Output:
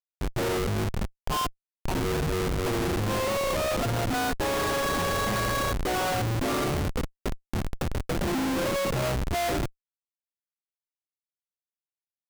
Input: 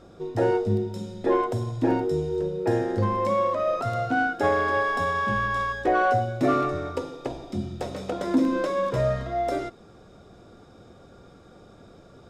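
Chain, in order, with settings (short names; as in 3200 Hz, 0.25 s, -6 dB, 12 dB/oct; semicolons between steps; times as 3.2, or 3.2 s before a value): 1.18–1.95 steep high-pass 750 Hz 48 dB/oct; Schmitt trigger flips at -27 dBFS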